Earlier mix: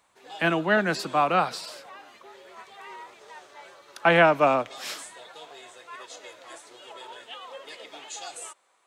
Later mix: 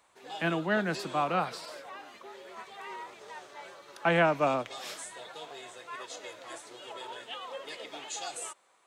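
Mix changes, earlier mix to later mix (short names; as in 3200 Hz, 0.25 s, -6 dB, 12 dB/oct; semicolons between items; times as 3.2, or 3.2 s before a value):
speech -7.5 dB; master: add low shelf 240 Hz +6.5 dB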